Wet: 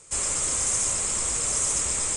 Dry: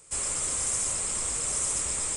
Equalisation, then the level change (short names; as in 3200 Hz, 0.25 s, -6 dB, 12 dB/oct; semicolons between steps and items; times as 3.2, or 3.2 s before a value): LPF 9300 Hz 12 dB/oct; bell 6500 Hz +4.5 dB 0.26 oct; +4.0 dB